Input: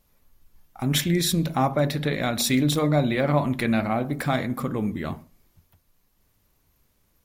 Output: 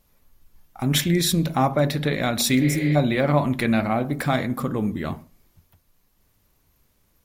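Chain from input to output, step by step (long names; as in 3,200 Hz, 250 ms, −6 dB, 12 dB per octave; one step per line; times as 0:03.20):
0:02.64–0:02.93: healed spectral selection 390–4,900 Hz before
0:04.56–0:05.01: parametric band 2,200 Hz −6 dB 0.25 octaves
level +2 dB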